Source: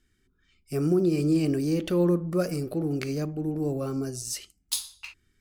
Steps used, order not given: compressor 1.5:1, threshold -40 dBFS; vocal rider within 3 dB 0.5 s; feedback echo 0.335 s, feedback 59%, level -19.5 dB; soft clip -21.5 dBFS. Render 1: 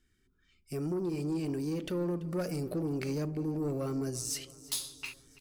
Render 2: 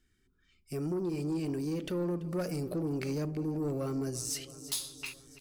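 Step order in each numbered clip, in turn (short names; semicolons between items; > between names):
vocal rider > soft clip > compressor > feedback echo; vocal rider > feedback echo > soft clip > compressor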